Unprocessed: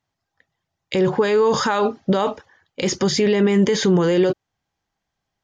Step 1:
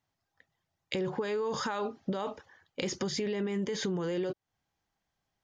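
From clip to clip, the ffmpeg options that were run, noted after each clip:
-af "acompressor=threshold=0.0398:ratio=4,volume=0.631"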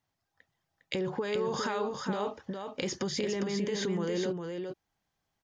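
-af "aecho=1:1:406:0.562"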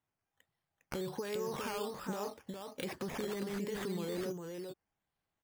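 -af "acrusher=samples=9:mix=1:aa=0.000001:lfo=1:lforange=5.4:lforate=1.3,volume=0.473"

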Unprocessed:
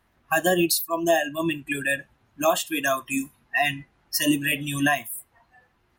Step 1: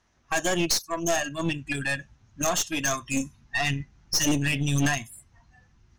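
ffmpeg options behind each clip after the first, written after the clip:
-af "asubboost=boost=6.5:cutoff=190,lowpass=f=6100:t=q:w=5.8,aeval=exprs='(tanh(8.91*val(0)+0.6)-tanh(0.6))/8.91':c=same"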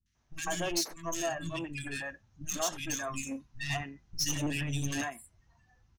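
-filter_complex "[0:a]acrossover=split=230|1900[s0][s1][s2];[s2]adelay=60[s3];[s1]adelay=150[s4];[s0][s4][s3]amix=inputs=3:normalize=0,volume=0.447"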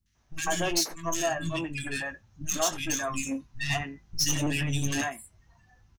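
-filter_complex "[0:a]asplit=2[s0][s1];[s1]adelay=19,volume=0.266[s2];[s0][s2]amix=inputs=2:normalize=0,volume=1.78"

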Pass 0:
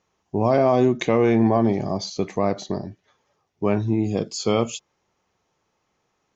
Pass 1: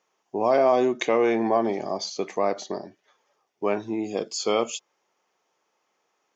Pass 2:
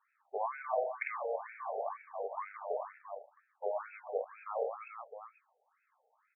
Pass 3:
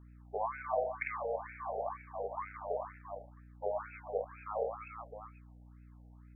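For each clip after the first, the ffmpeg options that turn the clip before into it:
-af "highpass=380,bandreject=f=4000:w=18"
-af "aecho=1:1:50|125|237.5|406.2|659.4:0.631|0.398|0.251|0.158|0.1,acompressor=threshold=0.0398:ratio=6,afftfilt=real='re*between(b*sr/1024,590*pow(1900/590,0.5+0.5*sin(2*PI*2.1*pts/sr))/1.41,590*pow(1900/590,0.5+0.5*sin(2*PI*2.1*pts/sr))*1.41)':imag='im*between(b*sr/1024,590*pow(1900/590,0.5+0.5*sin(2*PI*2.1*pts/sr))/1.41,590*pow(1900/590,0.5+0.5*sin(2*PI*2.1*pts/sr))*1.41)':win_size=1024:overlap=0.75,volume=1.12"
-af "aeval=exprs='val(0)+0.002*(sin(2*PI*60*n/s)+sin(2*PI*2*60*n/s)/2+sin(2*PI*3*60*n/s)/3+sin(2*PI*4*60*n/s)/4+sin(2*PI*5*60*n/s)/5)':c=same"

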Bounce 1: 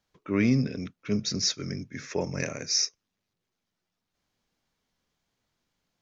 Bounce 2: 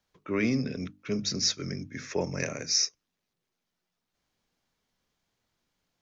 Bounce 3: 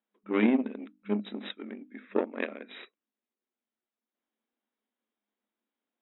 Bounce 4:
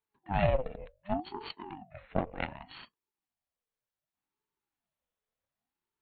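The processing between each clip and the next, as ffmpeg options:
-filter_complex "[0:a]bandreject=f=50:t=h:w=6,bandreject=f=100:t=h:w=6,bandreject=f=150:t=h:w=6,bandreject=f=200:t=h:w=6,bandreject=f=250:t=h:w=6,bandreject=f=300:t=h:w=6,acrossover=split=240|3300[s0][s1][s2];[s0]alimiter=level_in=1.88:limit=0.0631:level=0:latency=1,volume=0.531[s3];[s3][s1][s2]amix=inputs=3:normalize=0"
-af "aeval=exprs='0.299*(cos(1*acos(clip(val(0)/0.299,-1,1)))-cos(1*PI/2))+0.0335*(cos(7*acos(clip(val(0)/0.299,-1,1)))-cos(7*PI/2))':c=same,afftfilt=real='re*between(b*sr/4096,200,3900)':imag='im*between(b*sr/4096,200,3900)':win_size=4096:overlap=0.75,aemphasis=mode=reproduction:type=bsi,volume=1.58"
-af "aeval=exprs='val(0)*sin(2*PI*440*n/s+440*0.5/0.67*sin(2*PI*0.67*n/s))':c=same"

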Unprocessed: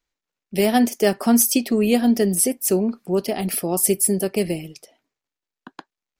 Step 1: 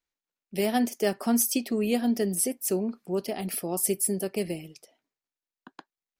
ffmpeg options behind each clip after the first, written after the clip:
-af "lowshelf=f=78:g=-6,volume=0.422"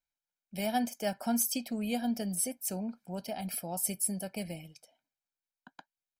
-af "aecho=1:1:1.3:0.77,volume=0.447"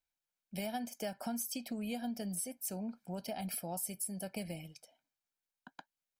-af "acompressor=threshold=0.0158:ratio=6"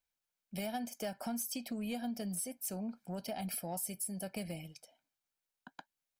-af "asoftclip=type=tanh:threshold=0.0355,volume=1.12"

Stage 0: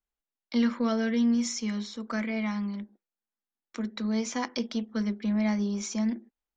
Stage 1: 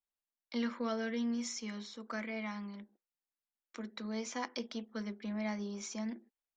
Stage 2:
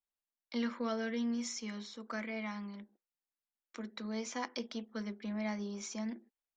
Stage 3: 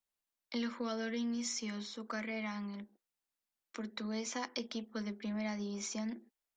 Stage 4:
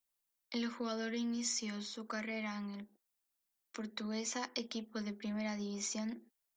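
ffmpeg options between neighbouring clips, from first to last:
-af "bass=f=250:g=-9,treble=f=4000:g=-2,volume=0.501"
-af anull
-filter_complex "[0:a]acrossover=split=120|3000[s0][s1][s2];[s1]acompressor=threshold=0.00794:ratio=2[s3];[s0][s3][s2]amix=inputs=3:normalize=0,volume=1.41"
-af "highshelf=f=7600:g=8.5,volume=0.891"

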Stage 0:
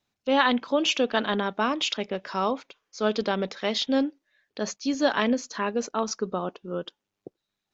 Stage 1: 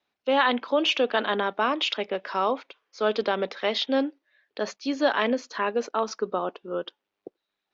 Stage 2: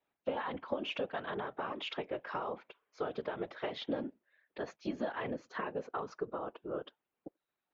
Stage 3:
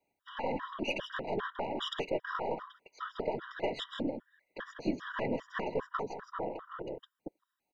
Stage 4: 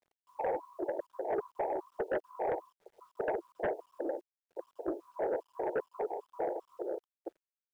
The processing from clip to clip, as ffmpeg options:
-filter_complex "[0:a]acrossover=split=280 4600:gain=0.178 1 0.0891[s0][s1][s2];[s0][s1][s2]amix=inputs=3:normalize=0,asplit=2[s3][s4];[s4]alimiter=limit=0.126:level=0:latency=1:release=21,volume=1[s5];[s3][s5]amix=inputs=2:normalize=0,volume=0.708"
-af "equalizer=f=5200:t=o:w=1.4:g=-13.5,acompressor=threshold=0.0316:ratio=10,afftfilt=real='hypot(re,im)*cos(2*PI*random(0))':imag='hypot(re,im)*sin(2*PI*random(1))':win_size=512:overlap=0.75,volume=1.26"
-af "aeval=exprs='0.0794*(cos(1*acos(clip(val(0)/0.0794,-1,1)))-cos(1*PI/2))+0.00501*(cos(6*acos(clip(val(0)/0.0794,-1,1)))-cos(6*PI/2))':c=same,aecho=1:1:160:0.422,afftfilt=real='re*gt(sin(2*PI*2.5*pts/sr)*(1-2*mod(floor(b*sr/1024/970),2)),0)':imag='im*gt(sin(2*PI*2.5*pts/sr)*(1-2*mod(floor(b*sr/1024/970),2)),0)':win_size=1024:overlap=0.75,volume=1.78"
-af "asuperpass=centerf=550:order=12:qfactor=0.98,aeval=exprs='0.0891*sin(PI/2*2.24*val(0)/0.0891)':c=same,acrusher=bits=10:mix=0:aa=0.000001,volume=0.501"

